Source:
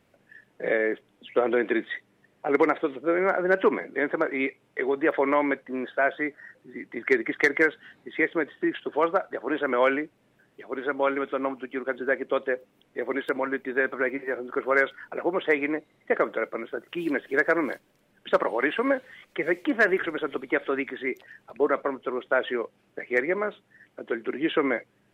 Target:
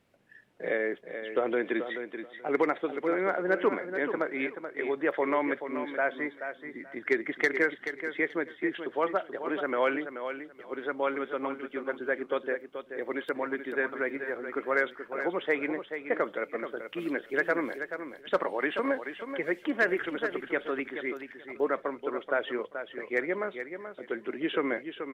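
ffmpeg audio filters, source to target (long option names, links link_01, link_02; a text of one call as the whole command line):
ffmpeg -i in.wav -filter_complex "[0:a]equalizer=frequency=4100:width_type=o:width=0.77:gain=2,asplit=2[link_01][link_02];[link_02]aecho=0:1:431|862|1293:0.355|0.0674|0.0128[link_03];[link_01][link_03]amix=inputs=2:normalize=0,volume=-5dB" out.wav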